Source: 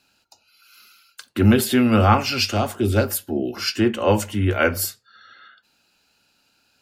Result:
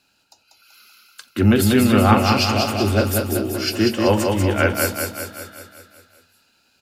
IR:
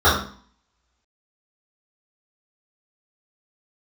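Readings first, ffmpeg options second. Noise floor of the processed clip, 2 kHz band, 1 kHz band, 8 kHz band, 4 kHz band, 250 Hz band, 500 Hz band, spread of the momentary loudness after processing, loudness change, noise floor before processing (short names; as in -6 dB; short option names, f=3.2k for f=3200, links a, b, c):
-63 dBFS, +2.0 dB, +2.0 dB, +2.0 dB, +2.0 dB, +2.0 dB, +2.0 dB, 15 LU, +2.0 dB, -65 dBFS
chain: -af "aecho=1:1:191|382|573|764|955|1146|1337|1528:0.631|0.36|0.205|0.117|0.0666|0.038|0.0216|0.0123"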